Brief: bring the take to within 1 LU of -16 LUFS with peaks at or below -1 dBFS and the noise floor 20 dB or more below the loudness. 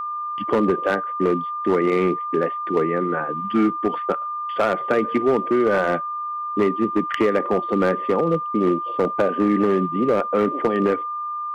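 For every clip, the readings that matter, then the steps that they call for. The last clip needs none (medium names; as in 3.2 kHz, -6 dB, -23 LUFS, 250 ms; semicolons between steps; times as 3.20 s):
clipped samples 1.8%; clipping level -12.0 dBFS; steady tone 1.2 kHz; tone level -25 dBFS; loudness -21.5 LUFS; peak level -12.0 dBFS; loudness target -16.0 LUFS
-> clip repair -12 dBFS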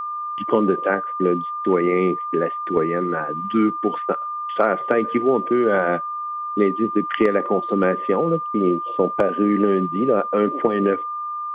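clipped samples 0.0%; steady tone 1.2 kHz; tone level -25 dBFS
-> band-stop 1.2 kHz, Q 30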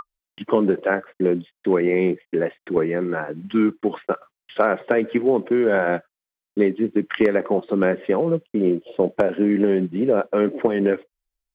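steady tone not found; loudness -21.5 LUFS; peak level -3.0 dBFS; loudness target -16.0 LUFS
-> trim +5.5 dB; peak limiter -1 dBFS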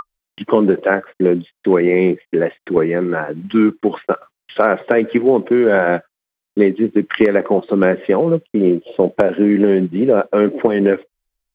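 loudness -16.0 LUFS; peak level -1.0 dBFS; noise floor -84 dBFS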